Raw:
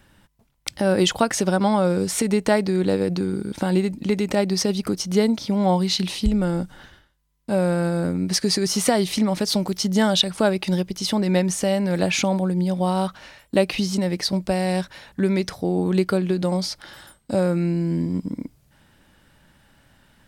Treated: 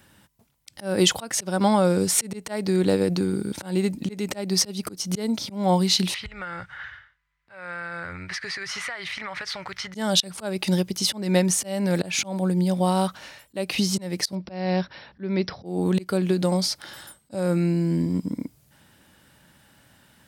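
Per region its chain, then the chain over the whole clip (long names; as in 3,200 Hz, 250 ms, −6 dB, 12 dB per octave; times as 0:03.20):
0:06.14–0:09.95: drawn EQ curve 120 Hz 0 dB, 210 Hz −23 dB, 900 Hz −1 dB, 1,300 Hz +9 dB, 2,000 Hz +13 dB, 2,800 Hz +2 dB, 13,000 Hz −26 dB + downward compressor 10 to 1, threshold −29 dBFS
0:14.35–0:15.66: linear-phase brick-wall low-pass 5,800 Hz + high-shelf EQ 3,100 Hz −6.5 dB
whole clip: volume swells 235 ms; high-pass filter 75 Hz; high-shelf EQ 5,800 Hz +7 dB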